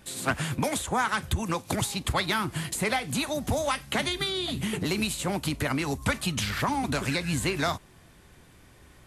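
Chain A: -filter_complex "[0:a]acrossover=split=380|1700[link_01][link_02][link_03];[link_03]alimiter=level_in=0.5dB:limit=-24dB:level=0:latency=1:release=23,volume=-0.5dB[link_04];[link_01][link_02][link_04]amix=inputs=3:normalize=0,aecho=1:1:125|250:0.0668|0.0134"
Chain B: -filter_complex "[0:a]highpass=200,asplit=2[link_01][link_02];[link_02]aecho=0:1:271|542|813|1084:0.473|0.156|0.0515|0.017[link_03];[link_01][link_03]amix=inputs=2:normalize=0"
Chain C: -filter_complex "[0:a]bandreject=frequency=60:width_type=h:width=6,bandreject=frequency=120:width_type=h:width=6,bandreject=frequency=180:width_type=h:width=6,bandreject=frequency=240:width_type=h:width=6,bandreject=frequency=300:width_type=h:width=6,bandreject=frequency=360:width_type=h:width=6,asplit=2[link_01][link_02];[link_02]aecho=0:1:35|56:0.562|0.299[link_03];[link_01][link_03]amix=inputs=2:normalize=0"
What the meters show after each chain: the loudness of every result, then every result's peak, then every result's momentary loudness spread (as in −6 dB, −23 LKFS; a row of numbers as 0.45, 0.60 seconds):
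−29.0, −28.5, −27.0 LKFS; −11.5, −12.5, −12.0 dBFS; 3, 3, 3 LU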